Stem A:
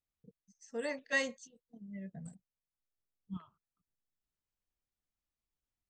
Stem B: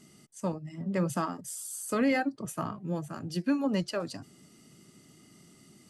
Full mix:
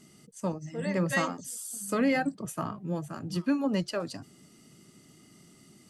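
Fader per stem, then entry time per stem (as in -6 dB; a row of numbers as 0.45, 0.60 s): +1.5, +0.5 dB; 0.00, 0.00 s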